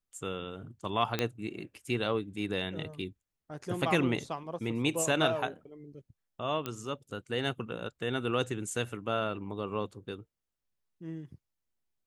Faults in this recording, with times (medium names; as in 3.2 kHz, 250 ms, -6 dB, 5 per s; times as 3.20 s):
1.19 s: pop -14 dBFS
6.66 s: pop -19 dBFS